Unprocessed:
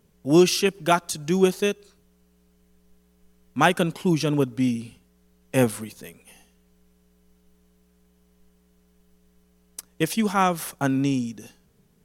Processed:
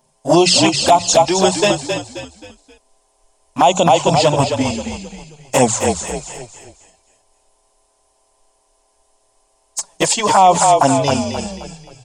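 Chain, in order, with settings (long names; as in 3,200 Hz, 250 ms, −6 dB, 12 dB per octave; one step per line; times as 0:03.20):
hearing-aid frequency compression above 3,800 Hz 1.5 to 1
first-order pre-emphasis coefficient 0.8
noise gate −60 dBFS, range −8 dB
flat-topped bell 780 Hz +15 dB 1.1 octaves
mains-hum notches 60/120/180 Hz
flanger swept by the level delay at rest 7.8 ms, full sweep at −22.5 dBFS
on a send: echo with shifted repeats 265 ms, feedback 38%, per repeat −37 Hz, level −7.5 dB
on the sum: boost into a limiter +23 dB
level −1 dB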